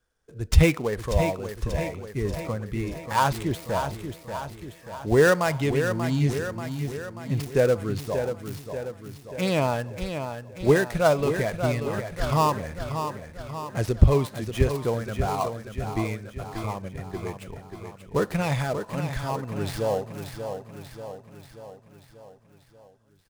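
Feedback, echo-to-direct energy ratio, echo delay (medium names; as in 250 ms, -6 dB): 56%, -6.5 dB, 586 ms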